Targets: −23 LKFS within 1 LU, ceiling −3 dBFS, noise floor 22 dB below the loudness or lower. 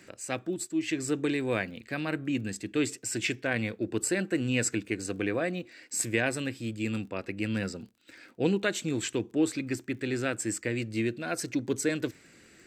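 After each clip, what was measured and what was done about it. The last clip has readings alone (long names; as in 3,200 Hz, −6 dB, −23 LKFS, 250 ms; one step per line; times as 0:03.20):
crackle rate 24 per second; integrated loudness −31.0 LKFS; sample peak −12.0 dBFS; target loudness −23.0 LKFS
→ click removal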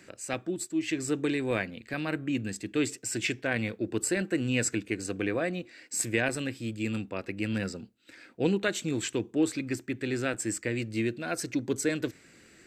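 crackle rate 0.079 per second; integrated loudness −31.0 LKFS; sample peak −12.0 dBFS; target loudness −23.0 LKFS
→ level +8 dB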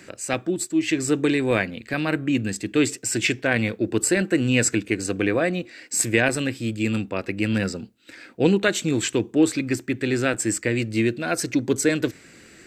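integrated loudness −23.0 LKFS; sample peak −4.0 dBFS; background noise floor −50 dBFS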